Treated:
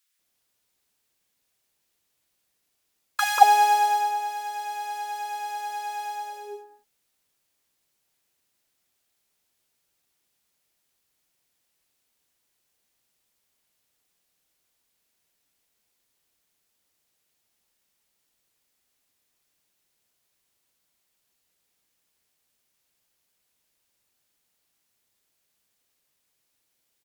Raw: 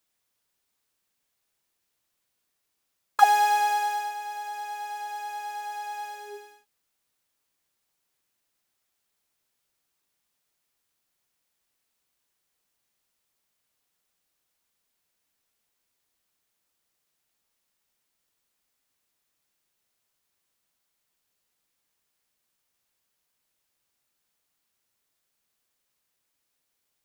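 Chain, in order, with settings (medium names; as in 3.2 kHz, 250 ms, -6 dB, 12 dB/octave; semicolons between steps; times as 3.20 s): bands offset in time highs, lows 190 ms, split 1.2 kHz; Chebyshev shaper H 7 -34 dB, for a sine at -6 dBFS; trim +5 dB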